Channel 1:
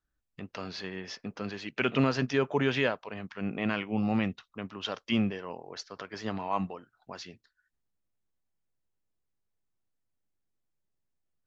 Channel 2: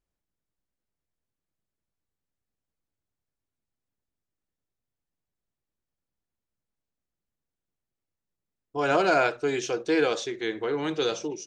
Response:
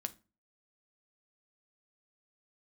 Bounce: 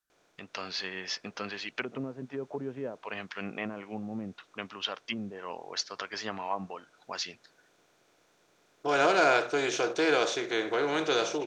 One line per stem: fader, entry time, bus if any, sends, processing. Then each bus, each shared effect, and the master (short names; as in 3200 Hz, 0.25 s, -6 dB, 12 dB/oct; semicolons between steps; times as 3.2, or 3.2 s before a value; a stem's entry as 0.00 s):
-1.5 dB, 0.00 s, no send, treble ducked by the level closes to 400 Hz, closed at -24 dBFS; tilt +2 dB/oct; vocal rider within 4 dB 0.5 s
-5.5 dB, 0.10 s, no send, per-bin compression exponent 0.6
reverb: off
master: low shelf 320 Hz -7.5 dB; AGC gain up to 3.5 dB